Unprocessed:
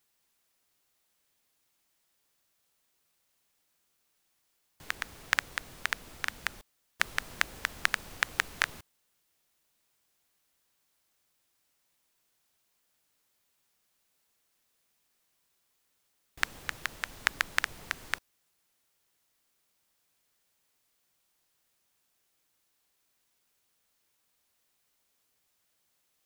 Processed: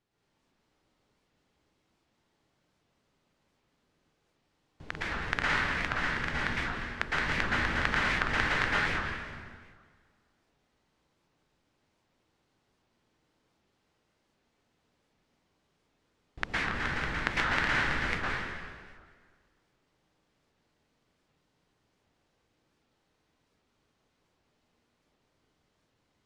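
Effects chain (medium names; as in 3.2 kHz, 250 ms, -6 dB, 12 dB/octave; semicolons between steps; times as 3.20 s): chunks repeated in reverse 224 ms, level -8 dB; low-pass 4.4 kHz 12 dB/octave; tilt shelf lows +7 dB, about 730 Hz; plate-style reverb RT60 1.7 s, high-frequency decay 0.85×, pre-delay 100 ms, DRR -7.5 dB; warped record 78 rpm, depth 250 cents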